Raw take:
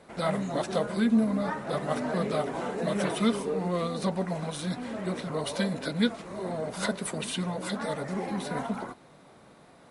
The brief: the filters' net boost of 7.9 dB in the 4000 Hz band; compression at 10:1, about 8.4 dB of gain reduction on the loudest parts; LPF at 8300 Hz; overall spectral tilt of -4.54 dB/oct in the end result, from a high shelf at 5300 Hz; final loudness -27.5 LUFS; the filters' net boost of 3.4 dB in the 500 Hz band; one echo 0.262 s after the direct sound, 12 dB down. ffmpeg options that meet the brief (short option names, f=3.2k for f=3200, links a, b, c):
-af "lowpass=8.3k,equalizer=f=500:t=o:g=4,equalizer=f=4k:t=o:g=7,highshelf=f=5.3k:g=6,acompressor=threshold=-26dB:ratio=10,aecho=1:1:262:0.251,volume=3.5dB"